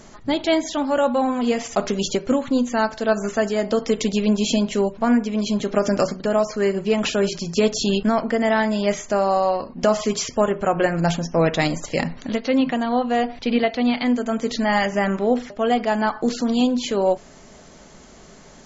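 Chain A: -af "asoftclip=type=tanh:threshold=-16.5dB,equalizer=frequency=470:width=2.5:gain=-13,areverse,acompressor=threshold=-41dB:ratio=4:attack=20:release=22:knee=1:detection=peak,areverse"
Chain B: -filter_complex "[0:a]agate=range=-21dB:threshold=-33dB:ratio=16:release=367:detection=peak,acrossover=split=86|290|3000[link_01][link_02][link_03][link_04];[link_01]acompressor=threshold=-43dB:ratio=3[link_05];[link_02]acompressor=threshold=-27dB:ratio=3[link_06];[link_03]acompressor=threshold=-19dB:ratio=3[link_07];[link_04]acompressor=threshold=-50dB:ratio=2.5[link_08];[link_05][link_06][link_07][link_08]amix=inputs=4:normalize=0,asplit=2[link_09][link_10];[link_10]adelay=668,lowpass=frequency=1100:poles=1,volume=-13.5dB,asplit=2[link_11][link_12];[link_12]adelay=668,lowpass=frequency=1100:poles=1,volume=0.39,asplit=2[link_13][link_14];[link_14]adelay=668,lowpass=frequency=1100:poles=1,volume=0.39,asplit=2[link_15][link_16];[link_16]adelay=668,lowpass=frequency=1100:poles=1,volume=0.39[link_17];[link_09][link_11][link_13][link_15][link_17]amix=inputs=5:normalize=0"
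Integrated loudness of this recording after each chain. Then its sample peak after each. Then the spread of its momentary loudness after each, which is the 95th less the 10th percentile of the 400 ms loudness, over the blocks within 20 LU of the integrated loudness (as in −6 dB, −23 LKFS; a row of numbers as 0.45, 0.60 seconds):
−37.0, −23.5 LKFS; −22.5, −6.5 dBFS; 3, 3 LU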